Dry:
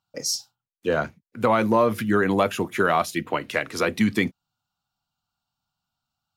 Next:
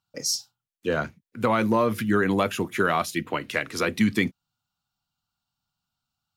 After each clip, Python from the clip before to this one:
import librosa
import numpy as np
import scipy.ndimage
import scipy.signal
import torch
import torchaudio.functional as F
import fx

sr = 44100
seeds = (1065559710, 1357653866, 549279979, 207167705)

y = fx.peak_eq(x, sr, hz=700.0, db=-4.5, octaves=1.4)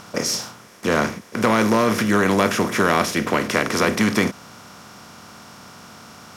y = fx.bin_compress(x, sr, power=0.4)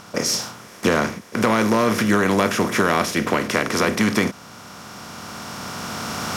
y = fx.recorder_agc(x, sr, target_db=-6.5, rise_db_per_s=8.1, max_gain_db=30)
y = y * 10.0 ** (-1.0 / 20.0)